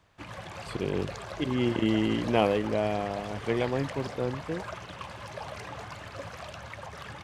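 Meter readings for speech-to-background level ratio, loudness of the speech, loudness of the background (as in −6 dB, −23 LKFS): 11.0 dB, −29.5 LKFS, −40.5 LKFS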